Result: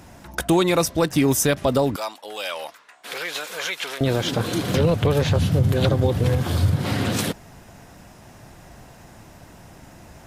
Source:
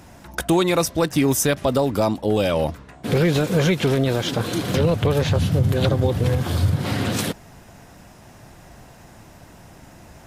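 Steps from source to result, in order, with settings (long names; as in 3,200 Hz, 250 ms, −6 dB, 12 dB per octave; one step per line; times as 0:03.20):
0:01.96–0:04.01: high-pass filter 1,100 Hz 12 dB per octave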